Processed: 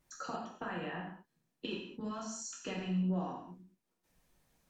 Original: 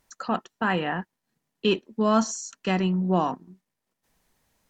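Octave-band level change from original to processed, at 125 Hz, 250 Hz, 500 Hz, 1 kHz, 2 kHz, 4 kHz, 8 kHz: −10.0, −12.0, −16.5, −15.5, −14.0, −13.0, −9.5 decibels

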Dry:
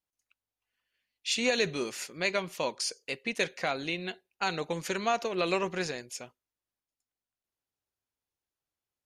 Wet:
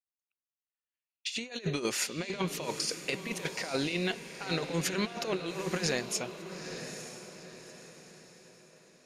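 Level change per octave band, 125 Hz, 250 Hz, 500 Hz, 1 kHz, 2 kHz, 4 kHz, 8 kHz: +5.0, +1.5, −3.0, −6.0, −3.0, −1.0, +2.5 decibels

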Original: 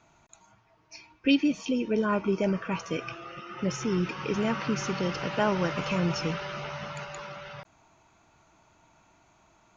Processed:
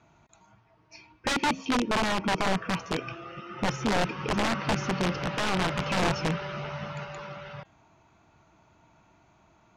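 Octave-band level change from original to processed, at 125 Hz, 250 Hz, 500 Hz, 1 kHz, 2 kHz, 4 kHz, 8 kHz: +0.5 dB, −2.5 dB, −1.5 dB, +4.5 dB, +4.0 dB, +4.0 dB, can't be measured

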